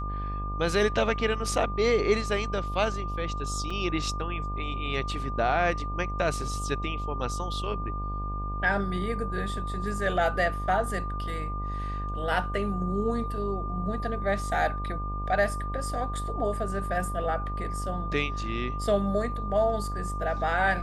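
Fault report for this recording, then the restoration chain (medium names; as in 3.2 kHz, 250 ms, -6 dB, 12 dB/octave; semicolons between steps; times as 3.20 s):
buzz 50 Hz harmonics 25 -33 dBFS
whine 1.2 kHz -35 dBFS
3.70 s: dropout 4.4 ms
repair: band-stop 1.2 kHz, Q 30; de-hum 50 Hz, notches 25; interpolate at 3.70 s, 4.4 ms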